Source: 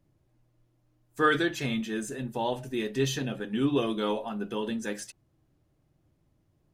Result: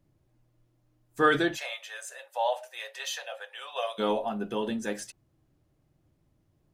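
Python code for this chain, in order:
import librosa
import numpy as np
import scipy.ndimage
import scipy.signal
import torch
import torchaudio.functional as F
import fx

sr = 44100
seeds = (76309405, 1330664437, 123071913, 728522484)

y = fx.cheby1_highpass(x, sr, hz=530.0, order=6, at=(1.56, 3.98), fade=0.02)
y = fx.dynamic_eq(y, sr, hz=690.0, q=2.2, threshold_db=-47.0, ratio=4.0, max_db=7)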